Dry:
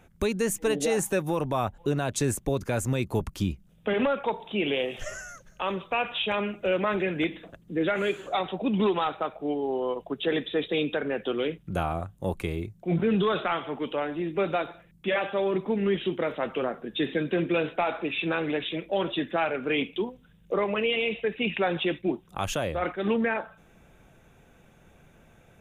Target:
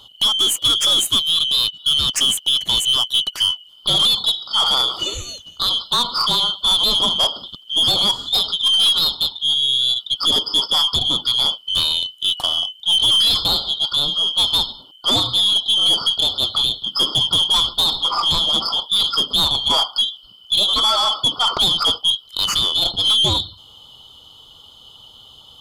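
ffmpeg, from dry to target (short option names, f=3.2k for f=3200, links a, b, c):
-af "afftfilt=real='real(if(lt(b,272),68*(eq(floor(b/68),0)*1+eq(floor(b/68),1)*3+eq(floor(b/68),2)*0+eq(floor(b/68),3)*2)+mod(b,68),b),0)':imag='imag(if(lt(b,272),68*(eq(floor(b/68),0)*1+eq(floor(b/68),1)*3+eq(floor(b/68),2)*0+eq(floor(b/68),3)*2)+mod(b,68),b),0)':win_size=2048:overlap=0.75,acontrast=69,aeval=exprs='0.447*(cos(1*acos(clip(val(0)/0.447,-1,1)))-cos(1*PI/2))+0.0708*(cos(5*acos(clip(val(0)/0.447,-1,1)))-cos(5*PI/2))+0.0141*(cos(6*acos(clip(val(0)/0.447,-1,1)))-cos(6*PI/2))':c=same"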